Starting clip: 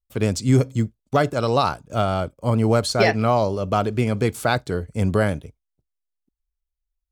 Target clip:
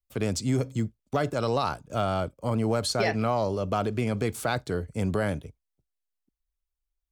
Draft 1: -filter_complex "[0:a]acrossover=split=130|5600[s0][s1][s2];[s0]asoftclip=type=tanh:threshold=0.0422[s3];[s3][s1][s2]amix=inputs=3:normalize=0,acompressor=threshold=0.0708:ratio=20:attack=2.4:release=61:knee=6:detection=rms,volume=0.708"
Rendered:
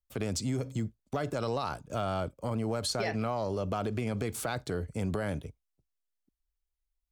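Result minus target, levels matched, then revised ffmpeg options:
compression: peak gain reduction +7 dB
-filter_complex "[0:a]acrossover=split=130|5600[s0][s1][s2];[s0]asoftclip=type=tanh:threshold=0.0422[s3];[s3][s1][s2]amix=inputs=3:normalize=0,acompressor=threshold=0.168:ratio=20:attack=2.4:release=61:knee=6:detection=rms,volume=0.708"

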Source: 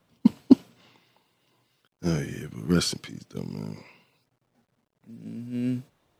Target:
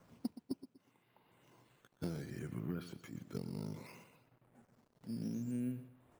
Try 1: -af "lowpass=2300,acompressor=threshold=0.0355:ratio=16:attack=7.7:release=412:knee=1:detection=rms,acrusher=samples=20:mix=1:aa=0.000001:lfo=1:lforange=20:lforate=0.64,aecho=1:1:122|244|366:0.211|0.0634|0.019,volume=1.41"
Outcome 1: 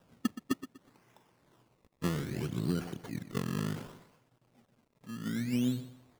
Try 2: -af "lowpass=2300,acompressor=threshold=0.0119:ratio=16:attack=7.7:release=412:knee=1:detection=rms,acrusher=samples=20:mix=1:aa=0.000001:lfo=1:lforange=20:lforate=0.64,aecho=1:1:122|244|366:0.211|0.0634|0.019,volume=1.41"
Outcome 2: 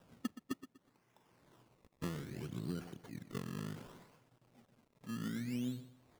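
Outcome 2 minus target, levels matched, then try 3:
decimation with a swept rate: distortion +10 dB
-af "lowpass=2300,acompressor=threshold=0.0119:ratio=16:attack=7.7:release=412:knee=1:detection=rms,acrusher=samples=6:mix=1:aa=0.000001:lfo=1:lforange=6:lforate=0.64,aecho=1:1:122|244|366:0.211|0.0634|0.019,volume=1.41"

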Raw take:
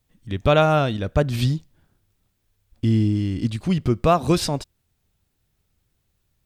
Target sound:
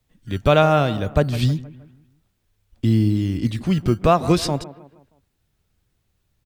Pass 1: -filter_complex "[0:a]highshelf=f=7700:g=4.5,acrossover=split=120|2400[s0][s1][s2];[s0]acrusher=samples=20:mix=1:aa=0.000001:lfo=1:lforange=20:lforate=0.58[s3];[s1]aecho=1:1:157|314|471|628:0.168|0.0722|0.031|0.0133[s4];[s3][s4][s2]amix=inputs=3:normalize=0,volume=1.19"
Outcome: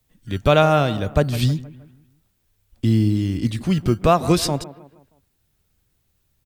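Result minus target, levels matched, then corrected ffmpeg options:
8 kHz band +4.0 dB
-filter_complex "[0:a]highshelf=f=7700:g=-4.5,acrossover=split=120|2400[s0][s1][s2];[s0]acrusher=samples=20:mix=1:aa=0.000001:lfo=1:lforange=20:lforate=0.58[s3];[s1]aecho=1:1:157|314|471|628:0.168|0.0722|0.031|0.0133[s4];[s3][s4][s2]amix=inputs=3:normalize=0,volume=1.19"

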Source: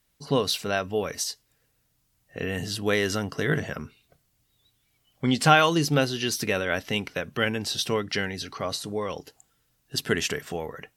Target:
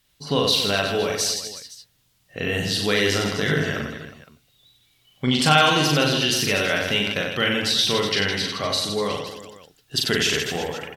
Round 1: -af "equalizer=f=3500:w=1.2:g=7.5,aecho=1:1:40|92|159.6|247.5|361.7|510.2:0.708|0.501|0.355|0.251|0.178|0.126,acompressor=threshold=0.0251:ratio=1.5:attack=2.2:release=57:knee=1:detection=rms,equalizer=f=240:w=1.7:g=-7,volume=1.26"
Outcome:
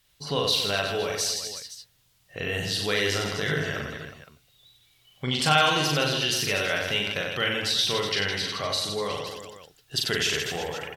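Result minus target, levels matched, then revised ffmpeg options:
250 Hz band -4.0 dB; compression: peak gain reduction +4 dB
-af "equalizer=f=3500:w=1.2:g=7.5,aecho=1:1:40|92|159.6|247.5|361.7|510.2:0.708|0.501|0.355|0.251|0.178|0.126,acompressor=threshold=0.0944:ratio=1.5:attack=2.2:release=57:knee=1:detection=rms,volume=1.26"

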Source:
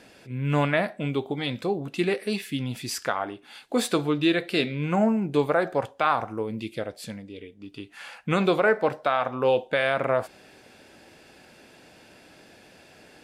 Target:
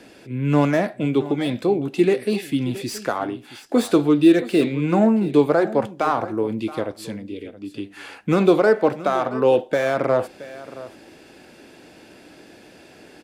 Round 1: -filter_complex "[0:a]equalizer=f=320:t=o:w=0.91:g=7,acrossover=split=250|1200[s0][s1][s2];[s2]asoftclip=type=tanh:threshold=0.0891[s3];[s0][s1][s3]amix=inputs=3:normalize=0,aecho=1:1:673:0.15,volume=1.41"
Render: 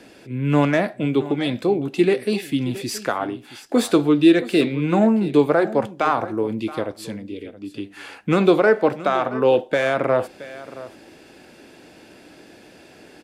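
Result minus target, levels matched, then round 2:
saturation: distortion -9 dB
-filter_complex "[0:a]equalizer=f=320:t=o:w=0.91:g=7,acrossover=split=250|1200[s0][s1][s2];[s2]asoftclip=type=tanh:threshold=0.0299[s3];[s0][s1][s3]amix=inputs=3:normalize=0,aecho=1:1:673:0.15,volume=1.41"

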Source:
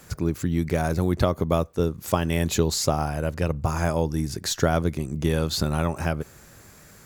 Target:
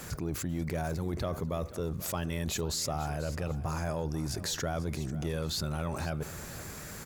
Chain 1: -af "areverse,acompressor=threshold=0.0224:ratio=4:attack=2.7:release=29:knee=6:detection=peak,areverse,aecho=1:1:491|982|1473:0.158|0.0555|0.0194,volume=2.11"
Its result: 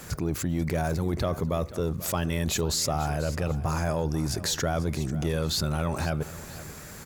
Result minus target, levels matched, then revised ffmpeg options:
compression: peak gain reduction -6 dB
-af "areverse,acompressor=threshold=0.00891:ratio=4:attack=2.7:release=29:knee=6:detection=peak,areverse,aecho=1:1:491|982|1473:0.158|0.0555|0.0194,volume=2.11"

